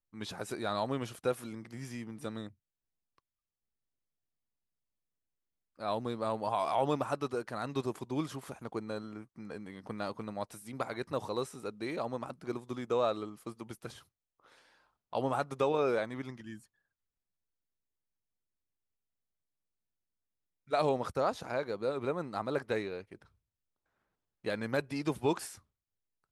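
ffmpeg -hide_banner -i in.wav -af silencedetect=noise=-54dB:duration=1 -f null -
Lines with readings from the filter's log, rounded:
silence_start: 3.18
silence_end: 5.79 | silence_duration: 2.61
silence_start: 16.65
silence_end: 20.68 | silence_duration: 4.03
silence_start: 23.25
silence_end: 24.44 | silence_duration: 1.19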